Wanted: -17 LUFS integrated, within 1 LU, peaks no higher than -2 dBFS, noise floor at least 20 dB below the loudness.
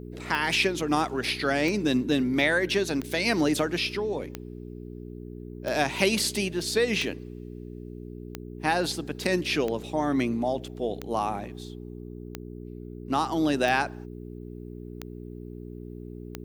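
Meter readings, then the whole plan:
clicks 13; hum 60 Hz; harmonics up to 420 Hz; hum level -37 dBFS; loudness -26.5 LUFS; peak -7.5 dBFS; loudness target -17.0 LUFS
-> de-click; de-hum 60 Hz, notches 7; gain +9.5 dB; limiter -2 dBFS

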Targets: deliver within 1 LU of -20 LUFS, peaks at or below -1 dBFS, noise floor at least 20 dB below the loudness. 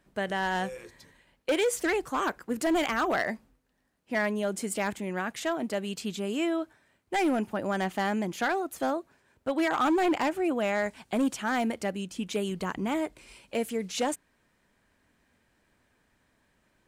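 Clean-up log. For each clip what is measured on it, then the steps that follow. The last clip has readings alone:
clipped 1.2%; flat tops at -21.0 dBFS; loudness -30.0 LUFS; peak -21.0 dBFS; loudness target -20.0 LUFS
-> clip repair -21 dBFS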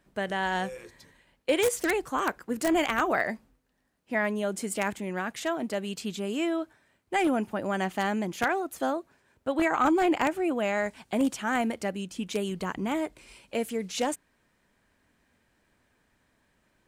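clipped 0.0%; loudness -29.0 LUFS; peak -12.0 dBFS; loudness target -20.0 LUFS
-> gain +9 dB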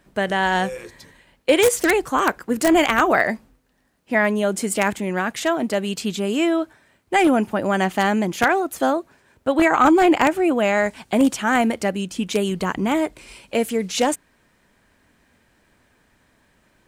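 loudness -20.0 LUFS; peak -3.0 dBFS; noise floor -62 dBFS

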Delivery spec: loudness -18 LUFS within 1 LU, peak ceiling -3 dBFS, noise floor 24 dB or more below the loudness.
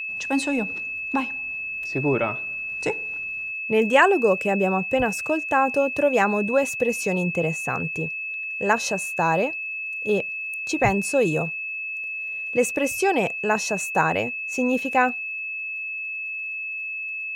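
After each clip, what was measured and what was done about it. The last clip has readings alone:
ticks 46/s; steady tone 2600 Hz; tone level -28 dBFS; loudness -23.5 LUFS; peak -3.5 dBFS; loudness target -18.0 LUFS
-> de-click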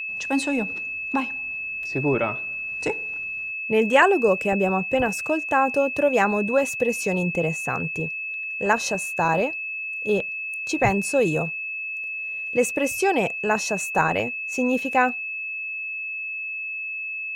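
ticks 0.52/s; steady tone 2600 Hz; tone level -28 dBFS
-> notch 2600 Hz, Q 30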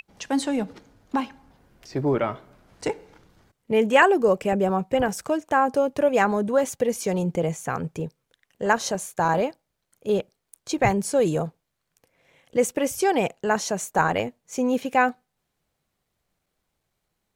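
steady tone none; loudness -24.0 LUFS; peak -4.0 dBFS; loudness target -18.0 LUFS
-> gain +6 dB; limiter -3 dBFS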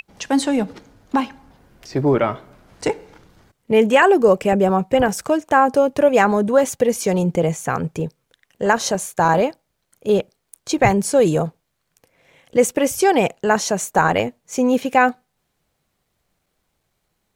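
loudness -18.5 LUFS; peak -3.0 dBFS; noise floor -73 dBFS

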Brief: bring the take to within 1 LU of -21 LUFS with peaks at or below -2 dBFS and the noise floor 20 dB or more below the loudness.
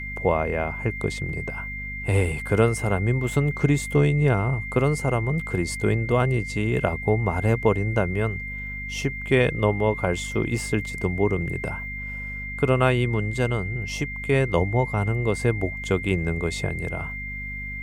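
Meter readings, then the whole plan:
hum 50 Hz; harmonics up to 250 Hz; hum level -35 dBFS; steady tone 2100 Hz; tone level -32 dBFS; loudness -24.5 LUFS; peak -6.0 dBFS; loudness target -21.0 LUFS
-> notches 50/100/150/200/250 Hz; notch 2100 Hz, Q 30; gain +3.5 dB

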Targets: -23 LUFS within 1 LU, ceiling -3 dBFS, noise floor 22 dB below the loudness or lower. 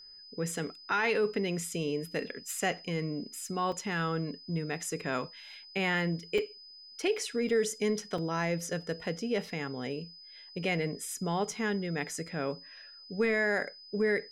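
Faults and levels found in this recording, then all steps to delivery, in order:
dropouts 4; longest dropout 3.4 ms; steady tone 5000 Hz; tone level -49 dBFS; loudness -32.5 LUFS; peak -18.5 dBFS; loudness target -23.0 LUFS
-> interpolate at 3.72/6.38/7.49/8.18, 3.4 ms; notch 5000 Hz, Q 30; gain +9.5 dB

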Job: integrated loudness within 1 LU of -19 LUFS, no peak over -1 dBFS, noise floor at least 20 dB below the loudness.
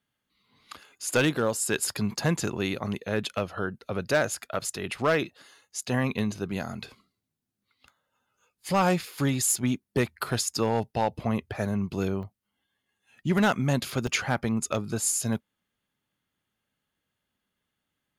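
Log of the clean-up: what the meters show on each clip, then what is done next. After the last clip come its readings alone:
clipped 0.3%; flat tops at -16.0 dBFS; dropouts 3; longest dropout 1.2 ms; loudness -28.0 LUFS; peak -16.0 dBFS; loudness target -19.0 LUFS
-> clip repair -16 dBFS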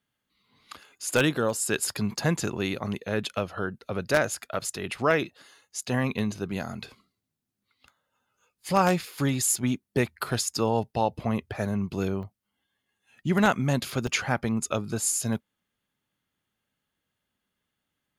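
clipped 0.0%; dropouts 3; longest dropout 1.2 ms
-> interpolate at 6.19/12.23/14.07, 1.2 ms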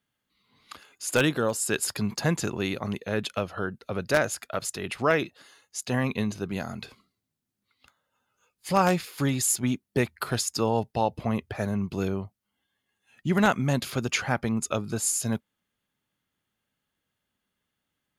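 dropouts 0; loudness -27.5 LUFS; peak -7.0 dBFS; loudness target -19.0 LUFS
-> gain +8.5 dB; limiter -1 dBFS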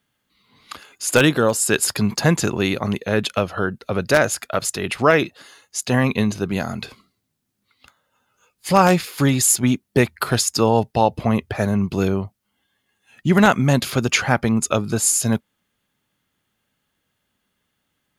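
loudness -19.5 LUFS; peak -1.0 dBFS; noise floor -74 dBFS

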